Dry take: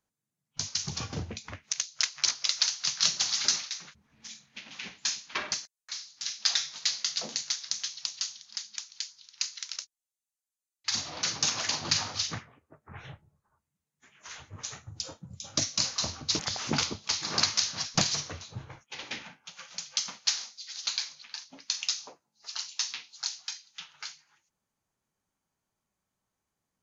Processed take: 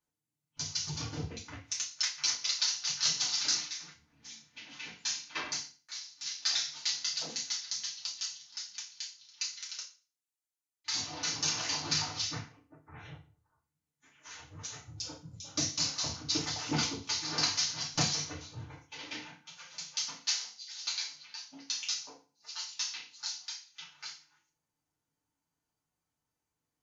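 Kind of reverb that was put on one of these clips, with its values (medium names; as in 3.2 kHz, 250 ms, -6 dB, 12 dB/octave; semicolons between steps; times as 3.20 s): FDN reverb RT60 0.35 s, low-frequency decay 1.2×, high-frequency decay 1×, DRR -5 dB; trim -9.5 dB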